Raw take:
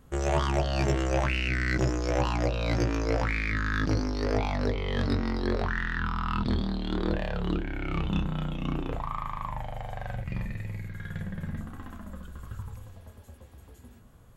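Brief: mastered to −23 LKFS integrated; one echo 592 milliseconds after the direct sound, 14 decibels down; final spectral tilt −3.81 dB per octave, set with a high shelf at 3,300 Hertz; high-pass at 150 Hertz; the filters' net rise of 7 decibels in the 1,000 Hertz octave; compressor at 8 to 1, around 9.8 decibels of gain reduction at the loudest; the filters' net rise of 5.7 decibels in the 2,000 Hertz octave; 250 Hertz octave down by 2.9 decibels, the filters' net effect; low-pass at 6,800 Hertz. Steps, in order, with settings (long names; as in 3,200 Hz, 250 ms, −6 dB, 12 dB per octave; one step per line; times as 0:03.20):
high-pass filter 150 Hz
low-pass filter 6,800 Hz
parametric band 250 Hz −3.5 dB
parametric band 1,000 Hz +8 dB
parametric band 2,000 Hz +5.5 dB
high-shelf EQ 3,300 Hz −3.5 dB
downward compressor 8 to 1, threshold −30 dBFS
single-tap delay 592 ms −14 dB
level +12.5 dB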